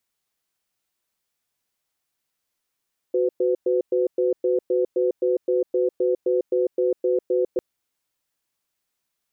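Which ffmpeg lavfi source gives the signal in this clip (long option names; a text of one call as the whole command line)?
ffmpeg -f lavfi -i "aevalsrc='0.0944*(sin(2*PI*369*t)+sin(2*PI*504*t))*clip(min(mod(t,0.26),0.15-mod(t,0.26))/0.005,0,1)':duration=4.45:sample_rate=44100" out.wav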